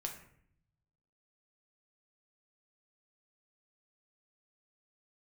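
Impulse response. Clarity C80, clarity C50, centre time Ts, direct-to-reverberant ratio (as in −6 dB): 11.0 dB, 7.5 dB, 21 ms, 1.5 dB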